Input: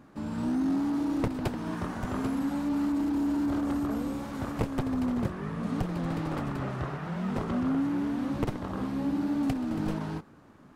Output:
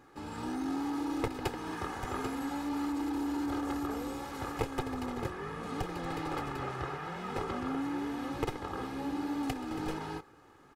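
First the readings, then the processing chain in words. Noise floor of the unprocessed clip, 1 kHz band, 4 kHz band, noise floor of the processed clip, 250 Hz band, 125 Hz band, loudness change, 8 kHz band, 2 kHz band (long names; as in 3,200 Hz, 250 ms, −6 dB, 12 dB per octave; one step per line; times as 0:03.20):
−54 dBFS, +1.0 dB, +1.5 dB, −58 dBFS, −7.0 dB, −8.5 dB, −5.5 dB, can't be measured, +0.5 dB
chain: low-shelf EQ 390 Hz −8.5 dB
comb filter 2.4 ms, depth 63%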